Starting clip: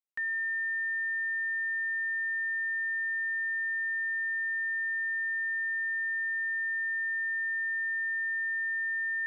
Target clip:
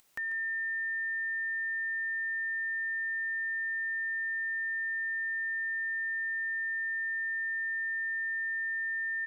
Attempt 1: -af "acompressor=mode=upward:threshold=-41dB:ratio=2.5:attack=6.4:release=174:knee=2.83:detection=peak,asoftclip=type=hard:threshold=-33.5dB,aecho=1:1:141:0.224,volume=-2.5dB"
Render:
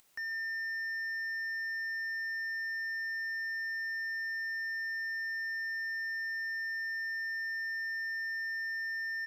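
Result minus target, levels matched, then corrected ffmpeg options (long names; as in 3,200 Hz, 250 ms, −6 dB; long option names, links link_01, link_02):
hard clipping: distortion +31 dB
-af "acompressor=mode=upward:threshold=-41dB:ratio=2.5:attack=6.4:release=174:knee=2.83:detection=peak,asoftclip=type=hard:threshold=-23.5dB,aecho=1:1:141:0.224,volume=-2.5dB"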